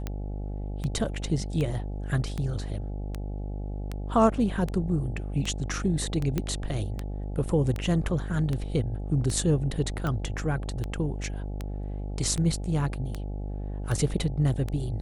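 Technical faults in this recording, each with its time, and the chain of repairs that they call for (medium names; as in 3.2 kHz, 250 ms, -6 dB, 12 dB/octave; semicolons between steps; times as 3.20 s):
buzz 50 Hz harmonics 17 -33 dBFS
tick 78 rpm -18 dBFS
6.38 s: pop -14 dBFS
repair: de-click; de-hum 50 Hz, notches 17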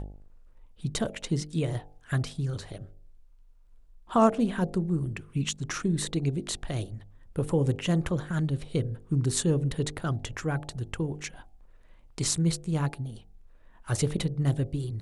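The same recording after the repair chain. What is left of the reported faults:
nothing left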